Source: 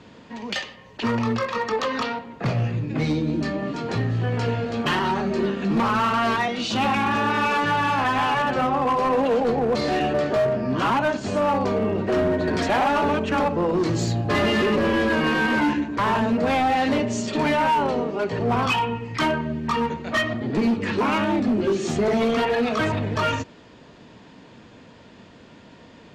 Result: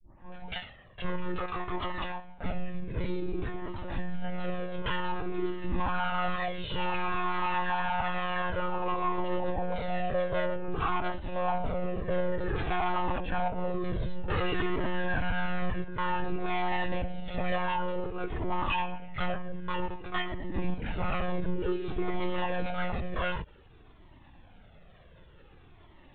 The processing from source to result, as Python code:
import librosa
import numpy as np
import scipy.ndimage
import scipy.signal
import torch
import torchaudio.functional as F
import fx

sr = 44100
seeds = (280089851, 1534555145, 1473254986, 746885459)

y = fx.tape_start_head(x, sr, length_s=0.5)
y = fx.lpc_monotone(y, sr, seeds[0], pitch_hz=180.0, order=10)
y = fx.comb_cascade(y, sr, direction='falling', hz=0.54)
y = y * 10.0 ** (-4.0 / 20.0)